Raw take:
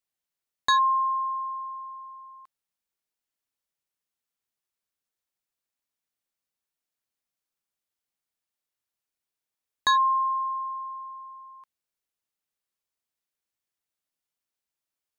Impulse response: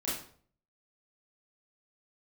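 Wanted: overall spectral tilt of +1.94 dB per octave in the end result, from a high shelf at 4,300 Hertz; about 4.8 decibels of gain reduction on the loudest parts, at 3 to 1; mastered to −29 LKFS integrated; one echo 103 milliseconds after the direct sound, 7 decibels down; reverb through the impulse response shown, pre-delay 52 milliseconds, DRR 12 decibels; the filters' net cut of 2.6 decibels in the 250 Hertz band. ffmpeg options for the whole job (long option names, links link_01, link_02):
-filter_complex "[0:a]equalizer=frequency=250:width_type=o:gain=-3.5,highshelf=frequency=4300:gain=8,acompressor=threshold=-23dB:ratio=3,aecho=1:1:103:0.447,asplit=2[link_01][link_02];[1:a]atrim=start_sample=2205,adelay=52[link_03];[link_02][link_03]afir=irnorm=-1:irlink=0,volume=-16.5dB[link_04];[link_01][link_04]amix=inputs=2:normalize=0,volume=-2.5dB"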